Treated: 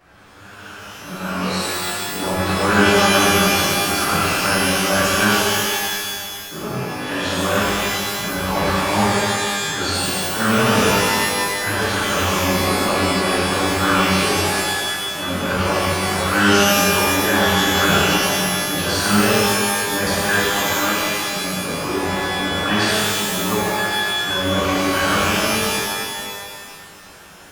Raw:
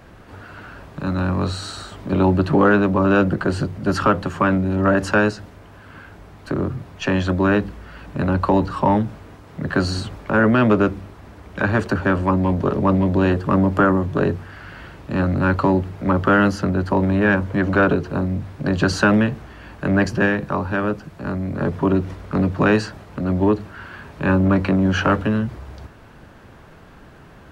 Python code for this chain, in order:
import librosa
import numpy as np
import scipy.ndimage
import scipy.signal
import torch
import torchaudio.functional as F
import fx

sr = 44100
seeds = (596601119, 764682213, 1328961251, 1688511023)

y = fx.low_shelf(x, sr, hz=400.0, db=-10.0)
y = fx.env_flanger(y, sr, rest_ms=11.5, full_db=-11.5)
y = fx.transient(y, sr, attack_db=-11, sustain_db=8)
y = fx.rev_shimmer(y, sr, seeds[0], rt60_s=1.9, semitones=12, shimmer_db=-2, drr_db=-9.0)
y = y * 10.0 ** (-3.0 / 20.0)